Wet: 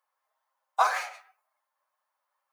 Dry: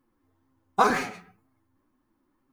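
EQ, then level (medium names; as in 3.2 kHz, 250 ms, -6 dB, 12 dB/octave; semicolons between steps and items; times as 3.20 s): Chebyshev high-pass 580 Hz, order 5; -1.5 dB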